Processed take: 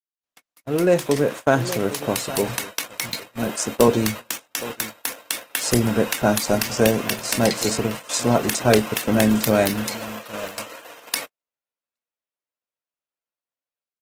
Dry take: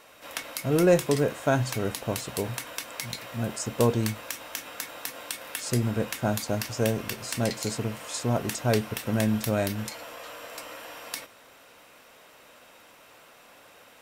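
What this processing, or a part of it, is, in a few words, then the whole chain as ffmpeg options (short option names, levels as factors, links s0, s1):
video call: -filter_complex "[0:a]asettb=1/sr,asplit=3[s0][s1][s2];[s0]atrim=end=3.254[s3];[s1]atrim=start=3.25:end=3.88,asetpts=PTS-STARTPTS,afade=t=in:d=0.004:c=qsin,afade=t=out:st=0.626:d=0.004:c=qsin,highpass=130[s4];[s2]atrim=start=3.876[s5];[s3][s4]acrossfade=d=0.004:c1=hsin:c2=qsin[s6];[s6][s5]acrossfade=d=0.004:c1=qsin:c2=hsin,highpass=160,aecho=1:1:817:0.141,dynaudnorm=f=230:g=9:m=3.55,agate=range=0.00158:threshold=0.0355:ratio=16:detection=peak" -ar 48000 -c:a libopus -b:a 16k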